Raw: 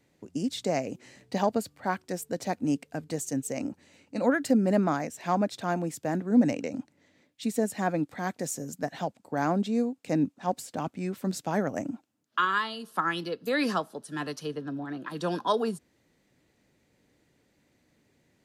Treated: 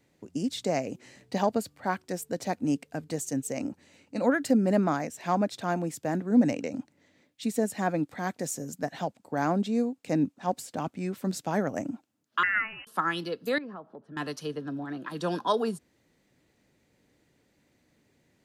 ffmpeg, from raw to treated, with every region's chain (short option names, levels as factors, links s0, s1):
-filter_complex "[0:a]asettb=1/sr,asplit=3[s0][s1][s2];[s0]atrim=end=12.434[s3];[s1]atrim=start=12.43:end=12.87,asetpts=PTS-STARTPTS,afade=t=in:d=0.004:c=qsin,afade=t=out:st=0.436:d=0.004:c=qsin,highpass=f=270:w=0.5412,highpass=f=270:w=1.3066,aeval=exprs='val(0)*gte(abs(val(0)),0.00891)':c=same,lowpass=f=2600:t=q:w=0.5098,lowpass=f=2600:t=q:w=0.6013,lowpass=f=2600:t=q:w=0.9,lowpass=f=2600:t=q:w=2.563,afreqshift=-3100[s4];[s2]atrim=start=12.866[s5];[s3][s4]acrossfade=d=0.004:c1=hsin:c2=qsin[s6];[s6][s5]acrossfade=d=0.004:c1=qsin:c2=hsin,asettb=1/sr,asplit=3[s7][s8][s9];[s7]atrim=end=13.584[s10];[s8]atrim=start=13.58:end=14.17,asetpts=PTS-STARTPTS,afade=t=in:d=0.004:c=qsin,afade=t=out:st=0.586:d=0.004:c=qsin,lowpass=1200,acompressor=threshold=0.00794:ratio=3:attack=3.2:release=140:knee=1:detection=peak[s11];[s9]atrim=start=14.166[s12];[s10][s11]acrossfade=d=0.004:c1=hsin:c2=qsin[s13];[s13][s12]acrossfade=d=0.004:c1=qsin:c2=hsin"